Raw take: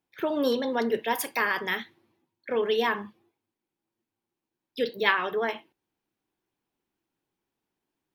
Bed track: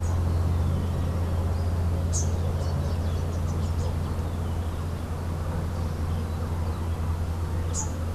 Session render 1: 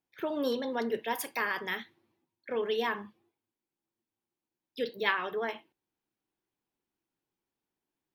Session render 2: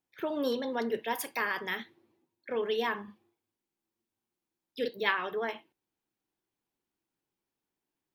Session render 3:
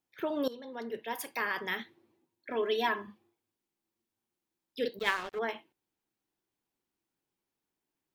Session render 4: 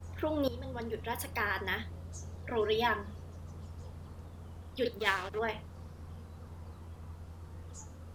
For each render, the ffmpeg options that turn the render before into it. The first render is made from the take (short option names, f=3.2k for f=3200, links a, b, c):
-af "volume=-5.5dB"
-filter_complex "[0:a]asettb=1/sr,asplit=3[a][b][c];[a]atrim=end=1.794[d];[b]atrim=start=1.79:end=2.49,asetpts=PTS-STARTPTS,afade=t=in:d=0.004:c=qsin,afade=t=out:st=0.696:d=0.004:c=qsin,equalizer=f=400:w=0.9:g=6.5[e];[c]atrim=start=2.486[f];[d][e]acrossfade=d=0.004:c1=hsin:c2=qsin[g];[g][f]acrossfade=d=0.004:c1=qsin:c2=hsin,asettb=1/sr,asplit=3[h][i][j];[h]atrim=end=3.034[k];[i]atrim=start=3.03:end=4.88,asetpts=PTS-STARTPTS,afade=t=in:d=0.004:c=qsin,afade=t=out:st=1.846:d=0.004:c=qsin,asplit=2[l][m];[m]adelay=49,volume=-5.5dB[n];[l][n]amix=inputs=2:normalize=0,atrim=end_sample=81585[o];[j]atrim=start=4.876[p];[k][o]acrossfade=d=0.004:c1=hsin:c2=qsin[q];[q][p]acrossfade=d=0.004:c1=qsin:c2=hsin"
-filter_complex "[0:a]asettb=1/sr,asplit=3[a][b][c];[a]atrim=end=2.494[d];[b]atrim=start=2.49:end=3.07,asetpts=PTS-STARTPTS,afade=t=in:d=0.004:c=qsin,afade=t=out:st=0.576:d=0.004:c=qsin,aecho=1:1:3:0.75,atrim=end_sample=25578[e];[c]atrim=start=3.066[f];[d][e]acrossfade=d=0.004:c1=hsin:c2=qsin[g];[g][f]acrossfade=d=0.004:c1=qsin:c2=hsin,asettb=1/sr,asplit=3[h][i][j];[h]atrim=end=4.994[k];[i]atrim=start=4.99:end=5.39,asetpts=PTS-STARTPTS,afade=t=in:d=0.004:c=qsin,afade=t=out:st=0.396:d=0.004:c=qsin,aeval=exprs='sgn(val(0))*max(abs(val(0))-0.0112,0)':c=same[l];[j]atrim=start=5.386[m];[k][l]acrossfade=d=0.004:c1=hsin:c2=qsin[n];[n][m]acrossfade=d=0.004:c1=qsin:c2=hsin,asplit=2[o][p];[o]atrim=end=0.48,asetpts=PTS-STARTPTS,afade=t=out:st=0.476:d=0.004:c=hsin:silence=0.158489[q];[p]atrim=start=0.48,asetpts=PTS-STARTPTS,afade=t=in:d=1.17:silence=0.158489[r];[q][r]concat=n=2:v=0:a=1"
-filter_complex "[1:a]volume=-19dB[a];[0:a][a]amix=inputs=2:normalize=0"